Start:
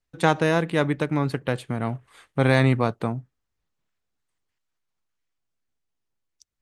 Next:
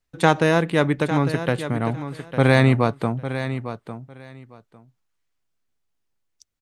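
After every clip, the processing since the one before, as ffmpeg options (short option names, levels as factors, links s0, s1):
-af "aecho=1:1:853|1706:0.282|0.0479,volume=1.41"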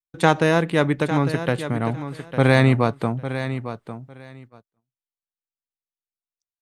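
-af "agate=range=0.0282:threshold=0.00708:ratio=16:detection=peak"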